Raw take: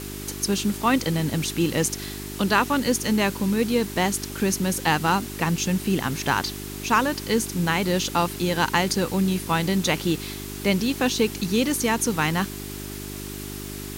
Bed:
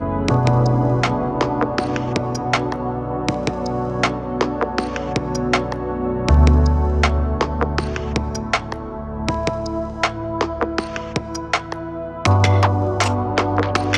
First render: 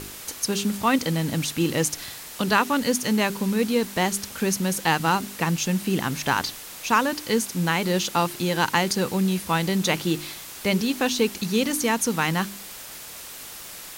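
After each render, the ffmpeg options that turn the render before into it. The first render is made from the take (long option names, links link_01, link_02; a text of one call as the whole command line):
ffmpeg -i in.wav -af "bandreject=frequency=50:width_type=h:width=4,bandreject=frequency=100:width_type=h:width=4,bandreject=frequency=150:width_type=h:width=4,bandreject=frequency=200:width_type=h:width=4,bandreject=frequency=250:width_type=h:width=4,bandreject=frequency=300:width_type=h:width=4,bandreject=frequency=350:width_type=h:width=4,bandreject=frequency=400:width_type=h:width=4" out.wav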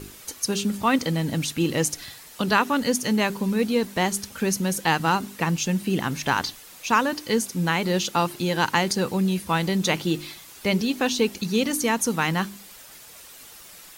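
ffmpeg -i in.wav -af "afftdn=noise_reduction=8:noise_floor=-40" out.wav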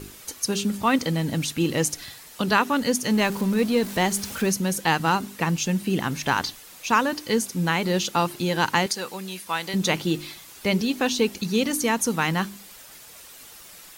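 ffmpeg -i in.wav -filter_complex "[0:a]asettb=1/sr,asplit=3[link_01][link_02][link_03];[link_01]atrim=end=3.104[link_04];[link_02]atrim=start=3.1:end=4.52,asetpts=PTS-STARTPTS,afade=type=in:duration=0.004:curve=qsin,afade=type=out:start_time=1.416:duration=0.004:curve=qsin,aeval=exprs='val(0)+0.5*0.0224*sgn(val(0))':channel_layout=same[link_05];[link_03]atrim=start=4.516[link_06];[link_04][link_05]acrossfade=duration=0.004:curve1=hsin:curve2=qsin[link_07];[link_07][link_06]acrossfade=duration=0.004:curve1=qsin:curve2=hsin,asettb=1/sr,asplit=3[link_08][link_09][link_10];[link_08]atrim=end=8.864[link_11];[link_09]atrim=start=8.86:end=9.74,asetpts=PTS-STARTPTS,afade=type=in:duration=0.004:curve=qsin,afade=type=out:start_time=0.876:duration=0.004:curve=qsin,highpass=frequency=1000:poles=1[link_12];[link_10]atrim=start=9.736[link_13];[link_11][link_12]acrossfade=duration=0.004:curve1=hsin:curve2=qsin[link_14];[link_14][link_13]acrossfade=duration=0.004:curve1=qsin:curve2=hsin" out.wav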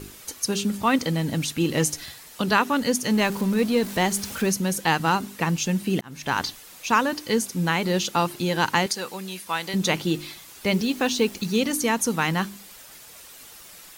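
ffmpeg -i in.wav -filter_complex "[0:a]asettb=1/sr,asplit=3[link_01][link_02][link_03];[link_01]atrim=end=1.724[link_04];[link_02]atrim=start=1.72:end=2.12,asetpts=PTS-STARTPTS,afade=type=in:duration=0.004:curve=qsin,afade=type=out:start_time=0.396:duration=0.004:curve=qsin,asplit=2[link_05][link_06];[link_06]adelay=13,volume=-7dB[link_07];[link_05][link_07]amix=inputs=2:normalize=0,atrim=end_sample=17640[link_08];[link_03]atrim=start=2.116[link_09];[link_04][link_08]acrossfade=duration=0.004:curve1=hsin:curve2=qsin[link_10];[link_10][link_09]acrossfade=duration=0.004:curve1=qsin:curve2=hsin,asettb=1/sr,asplit=3[link_11][link_12][link_13];[link_11]atrim=end=10.684[link_14];[link_12]atrim=start=10.68:end=11.58,asetpts=PTS-STARTPTS,afade=type=in:duration=0.004:curve=qsin,afade=type=out:start_time=0.896:duration=0.004:curve=qsin,acrusher=bits=8:dc=4:mix=0:aa=0.000001[link_15];[link_13]atrim=start=11.576[link_16];[link_14][link_15]acrossfade=duration=0.004:curve1=hsin:curve2=qsin[link_17];[link_17][link_16]acrossfade=duration=0.004:curve1=qsin:curve2=hsin,asplit=2[link_18][link_19];[link_18]atrim=end=6.01,asetpts=PTS-STARTPTS,afade=type=out:start_time=6.006:duration=0.004:curve=hsin[link_20];[link_19]atrim=start=6.01,asetpts=PTS-STARTPTS,afade=type=in:duration=0.4[link_21];[link_20][link_21]concat=n=2:v=0:a=1" out.wav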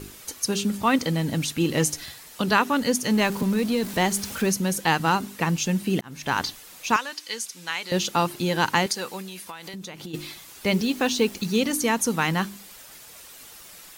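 ffmpeg -i in.wav -filter_complex "[0:a]asettb=1/sr,asplit=3[link_01][link_02][link_03];[link_01]atrim=end=3.424[link_04];[link_02]atrim=start=3.42:end=3.94,asetpts=PTS-STARTPTS,afade=type=in:duration=0.004:curve=qsin,afade=type=out:start_time=0.516:duration=0.004:curve=qsin,acrossover=split=220|3000[link_05][link_06][link_07];[link_06]acompressor=threshold=-22dB:ratio=6:attack=3.2:release=140:knee=2.83:detection=peak[link_08];[link_05][link_08][link_07]amix=inputs=3:normalize=0[link_09];[link_03]atrim=start=3.936[link_10];[link_04][link_09]acrossfade=duration=0.004:curve1=hsin:curve2=qsin[link_11];[link_11][link_10]acrossfade=duration=0.004:curve1=qsin:curve2=hsin,asettb=1/sr,asplit=3[link_12][link_13][link_14];[link_12]atrim=end=6.964[link_15];[link_13]atrim=start=6.96:end=7.92,asetpts=PTS-STARTPTS,afade=type=in:duration=0.004:curve=qsin,afade=type=out:start_time=0.956:duration=0.004:curve=qsin,bandpass=frequency=4700:width_type=q:width=0.54[link_16];[link_14]atrim=start=7.916[link_17];[link_15][link_16]acrossfade=duration=0.004:curve1=hsin:curve2=qsin[link_18];[link_18][link_17]acrossfade=duration=0.004:curve1=qsin:curve2=hsin,asplit=3[link_19][link_20][link_21];[link_19]afade=type=out:start_time=9.21:duration=0.02[link_22];[link_20]acompressor=threshold=-33dB:ratio=16:attack=3.2:release=140:knee=1:detection=peak,afade=type=in:start_time=9.21:duration=0.02,afade=type=out:start_time=10.13:duration=0.02[link_23];[link_21]afade=type=in:start_time=10.13:duration=0.02[link_24];[link_22][link_23][link_24]amix=inputs=3:normalize=0" out.wav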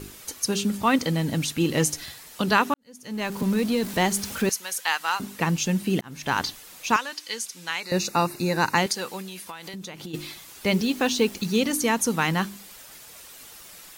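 ffmpeg -i in.wav -filter_complex "[0:a]asettb=1/sr,asplit=3[link_01][link_02][link_03];[link_01]atrim=end=4.494[link_04];[link_02]atrim=start=4.49:end=5.2,asetpts=PTS-STARTPTS,afade=type=in:duration=0.004:curve=qsin,afade=type=out:start_time=0.706:duration=0.004:curve=qsin,highpass=1100[link_05];[link_03]atrim=start=5.196[link_06];[link_04][link_05]acrossfade=duration=0.004:curve1=hsin:curve2=qsin[link_07];[link_07][link_06]acrossfade=duration=0.004:curve1=qsin:curve2=hsin,asettb=1/sr,asplit=3[link_08][link_09][link_10];[link_08]atrim=end=7.804[link_11];[link_09]atrim=start=7.8:end=8.78,asetpts=PTS-STARTPTS,afade=type=in:duration=0.004:curve=qsin,afade=type=out:start_time=0.976:duration=0.004:curve=qsin,asuperstop=centerf=3200:order=8:qfactor=3.9[link_12];[link_10]atrim=start=8.776[link_13];[link_11][link_12]acrossfade=duration=0.004:curve1=hsin:curve2=qsin[link_14];[link_14][link_13]acrossfade=duration=0.004:curve1=qsin:curve2=hsin,asplit=2[link_15][link_16];[link_15]atrim=end=2.74,asetpts=PTS-STARTPTS,afade=type=out:start_time=2.736:duration=0.004:curve=hsin[link_17];[link_16]atrim=start=2.74,asetpts=PTS-STARTPTS,afade=type=in:duration=0.74:curve=qua[link_18];[link_17][link_18]concat=n=2:v=0:a=1" out.wav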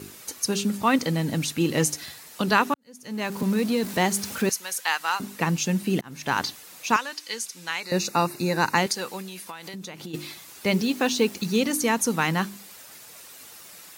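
ffmpeg -i in.wav -af "highpass=100,equalizer=frequency=3200:width=6.7:gain=-3" out.wav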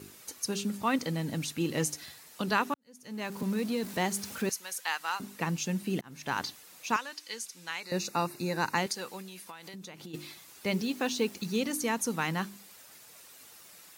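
ffmpeg -i in.wav -af "volume=-7.5dB" out.wav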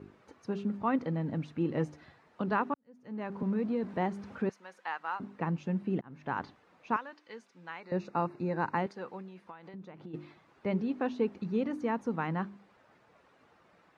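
ffmpeg -i in.wav -af "lowpass=1300" out.wav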